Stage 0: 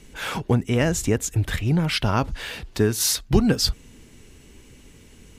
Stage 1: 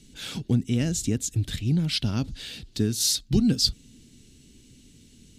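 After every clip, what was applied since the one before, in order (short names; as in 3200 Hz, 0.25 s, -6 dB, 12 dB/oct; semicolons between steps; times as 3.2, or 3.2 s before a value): ten-band EQ 125 Hz +5 dB, 250 Hz +8 dB, 500 Hz -4 dB, 1000 Hz -11 dB, 2000 Hz -4 dB, 4000 Hz +10 dB, 8000 Hz +5 dB; gain -8.5 dB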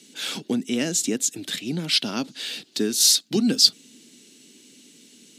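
Bessel high-pass 330 Hz, order 6; gain +7 dB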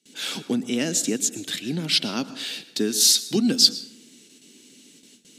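gate with hold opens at -41 dBFS; on a send at -14.5 dB: reverb RT60 0.70 s, pre-delay 0.103 s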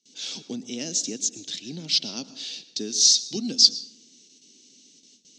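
EQ curve 700 Hz 0 dB, 1500 Hz -8 dB, 6100 Hz +13 dB, 11000 Hz -23 dB; gain -9 dB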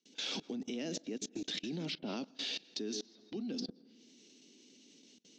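treble ducked by the level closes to 1000 Hz, closed at -19 dBFS; three-band isolator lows -17 dB, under 170 Hz, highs -14 dB, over 2900 Hz; level quantiser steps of 23 dB; gain +7.5 dB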